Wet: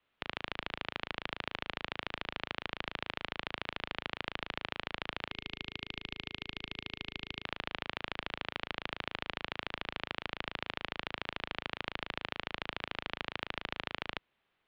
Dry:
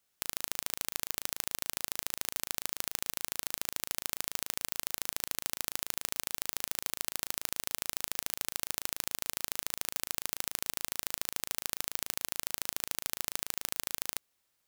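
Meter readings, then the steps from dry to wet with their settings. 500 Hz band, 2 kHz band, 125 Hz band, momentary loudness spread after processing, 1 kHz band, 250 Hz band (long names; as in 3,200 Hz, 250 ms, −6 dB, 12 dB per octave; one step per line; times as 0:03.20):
+4.5 dB, +4.5 dB, +5.0 dB, 2 LU, +4.5 dB, +5.0 dB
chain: gain on a spectral selection 0:05.31–0:07.45, 570–2,300 Hz −10 dB
single-sideband voice off tune −150 Hz 150–3,500 Hz
level +5 dB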